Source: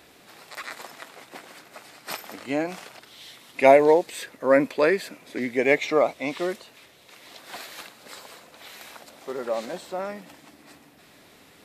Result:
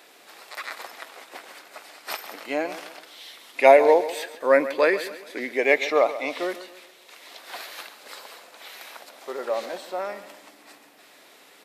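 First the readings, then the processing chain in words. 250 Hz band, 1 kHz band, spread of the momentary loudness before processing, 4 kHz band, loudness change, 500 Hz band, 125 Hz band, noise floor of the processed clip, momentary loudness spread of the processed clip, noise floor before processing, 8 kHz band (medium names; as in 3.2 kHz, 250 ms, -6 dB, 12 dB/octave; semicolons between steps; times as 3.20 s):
-4.5 dB, +2.0 dB, 23 LU, +2.0 dB, +0.5 dB, +1.0 dB, under -10 dB, -53 dBFS, 22 LU, -54 dBFS, -0.5 dB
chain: high-pass 410 Hz 12 dB/octave; dynamic bell 7.6 kHz, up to -5 dB, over -57 dBFS, Q 2.3; on a send: feedback delay 137 ms, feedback 41%, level -14 dB; on the sum: trim +2 dB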